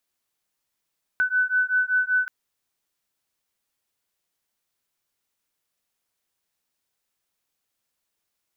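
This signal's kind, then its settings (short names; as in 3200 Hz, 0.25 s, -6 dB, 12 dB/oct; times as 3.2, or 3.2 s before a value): beating tones 1500 Hz, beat 5.2 Hz, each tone -22.5 dBFS 1.08 s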